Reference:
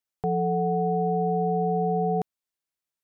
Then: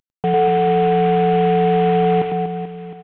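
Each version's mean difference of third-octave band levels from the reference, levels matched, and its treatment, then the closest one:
11.5 dB: variable-slope delta modulation 16 kbit/s
reverse bouncing-ball delay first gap 100 ms, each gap 1.4×, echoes 5
level +8 dB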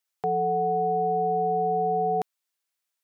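1.5 dB: high-pass filter 880 Hz 6 dB per octave
level +6.5 dB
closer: second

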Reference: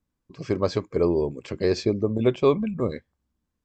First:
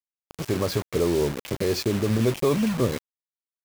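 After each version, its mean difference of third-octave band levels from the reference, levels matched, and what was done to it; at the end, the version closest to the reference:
11.0 dB: dynamic equaliser 120 Hz, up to +4 dB, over −38 dBFS, Q 2.1
brickwall limiter −17.5 dBFS, peak gain reduction 8.5 dB
pitch vibrato 0.86 Hz 5.2 cents
bit reduction 6 bits
level +3.5 dB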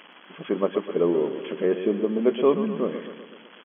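7.5 dB: spike at every zero crossing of −19 dBFS
dynamic equaliser 2,400 Hz, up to −7 dB, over −49 dBFS, Q 1.7
linear-phase brick-wall band-pass 160–3,400 Hz
repeating echo 125 ms, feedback 59%, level −10.5 dB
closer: second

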